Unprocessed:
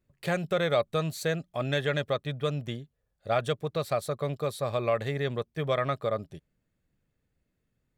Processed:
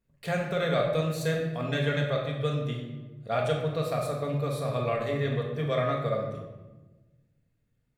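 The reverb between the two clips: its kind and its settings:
rectangular room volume 690 cubic metres, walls mixed, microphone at 1.7 metres
level −4 dB

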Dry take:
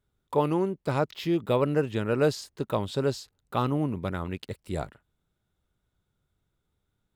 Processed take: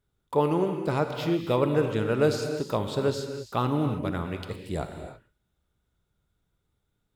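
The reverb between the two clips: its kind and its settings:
reverb whose tail is shaped and stops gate 350 ms flat, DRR 5.5 dB

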